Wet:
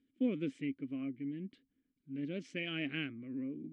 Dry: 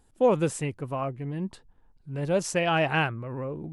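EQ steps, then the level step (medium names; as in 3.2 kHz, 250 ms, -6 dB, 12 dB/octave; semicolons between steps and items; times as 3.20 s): vowel filter i; distance through air 70 m; +3.0 dB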